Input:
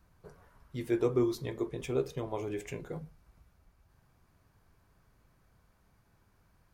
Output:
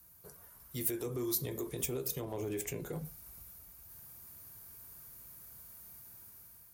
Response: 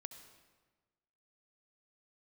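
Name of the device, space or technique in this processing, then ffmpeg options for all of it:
FM broadcast chain: -filter_complex "[0:a]asettb=1/sr,asplit=3[link_01][link_02][link_03];[link_01]atrim=end=2.194[link_04];[link_02]atrim=start=2.19:end=3.05,asetpts=PTS-STARTPTS,afade=type=in:duration=0.004:curve=qsin,afade=type=out:start_time=0.856:duration=0.004:curve=qsin,highshelf=frequency=6700:gain=-8.5[link_05];[link_03]atrim=start=3.046[link_06];[link_04][link_05]acrossfade=duration=0.004:curve1=hsin:curve2=qsin[link_07];[link_07][link_06]acrossfade=duration=0.004:curve1=qsin:curve2=hsin,highpass=47,dynaudnorm=framelen=370:gausssize=5:maxgain=7.5dB,acrossover=split=350|710[link_08][link_09][link_10];[link_08]acompressor=threshold=-32dB:ratio=4[link_11];[link_09]acompressor=threshold=-35dB:ratio=4[link_12];[link_10]acompressor=threshold=-46dB:ratio=4[link_13];[link_11][link_12][link_13]amix=inputs=3:normalize=0,aemphasis=mode=production:type=50fm,alimiter=level_in=1.5dB:limit=-24dB:level=0:latency=1:release=55,volume=-1.5dB,asoftclip=type=hard:threshold=-27dB,lowpass=frequency=15000:width=0.5412,lowpass=frequency=15000:width=1.3066,aemphasis=mode=production:type=50fm,volume=-3.5dB"

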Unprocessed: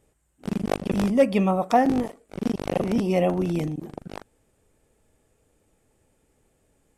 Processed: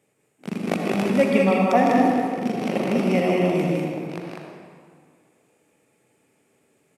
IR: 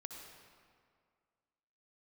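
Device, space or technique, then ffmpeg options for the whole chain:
stadium PA: -filter_complex "[0:a]highpass=frequency=130:width=0.5412,highpass=frequency=130:width=1.3066,equalizer=frequency=2300:width_type=o:width=0.56:gain=7.5,aecho=1:1:157.4|198.3:0.501|0.631[link_01];[1:a]atrim=start_sample=2205[link_02];[link_01][link_02]afir=irnorm=-1:irlink=0,volume=4.5dB"

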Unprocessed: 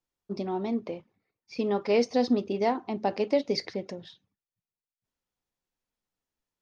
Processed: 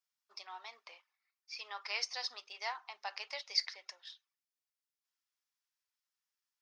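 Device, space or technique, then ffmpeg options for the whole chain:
headphones lying on a table: -af "highpass=frequency=1100:width=0.5412,highpass=frequency=1100:width=1.3066,equalizer=frequency=5200:width_type=o:width=0.39:gain=5.5,volume=-2dB"

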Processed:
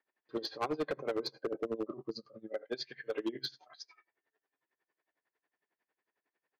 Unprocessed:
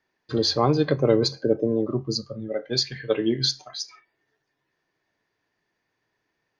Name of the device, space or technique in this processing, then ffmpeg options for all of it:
helicopter radio: -af "highpass=330,lowpass=2800,aeval=exprs='val(0)*pow(10,-21*(0.5-0.5*cos(2*PI*11*n/s))/20)':channel_layout=same,asoftclip=type=hard:threshold=-24.5dB,volume=-3.5dB"

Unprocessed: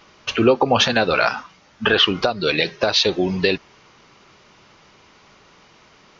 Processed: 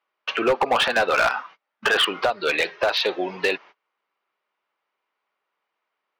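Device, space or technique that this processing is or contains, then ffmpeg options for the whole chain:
walkie-talkie: -af "highpass=590,lowpass=2500,asoftclip=type=hard:threshold=-16.5dB,agate=range=-28dB:threshold=-45dB:ratio=16:detection=peak,volume=2.5dB"

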